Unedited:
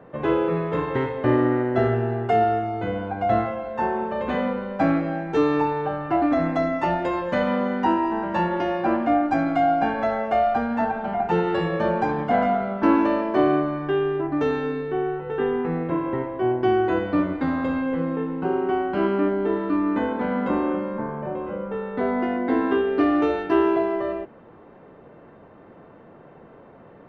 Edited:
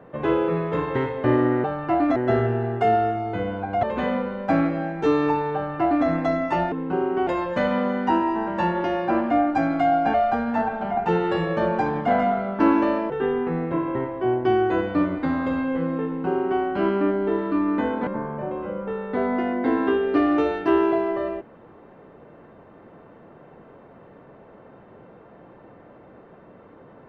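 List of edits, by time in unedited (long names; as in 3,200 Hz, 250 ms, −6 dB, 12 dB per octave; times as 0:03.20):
0:03.31–0:04.14: remove
0:05.86–0:06.38: duplicate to 0:01.64
0:09.90–0:10.37: remove
0:13.33–0:15.28: remove
0:18.24–0:18.79: duplicate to 0:07.03
0:20.25–0:20.91: remove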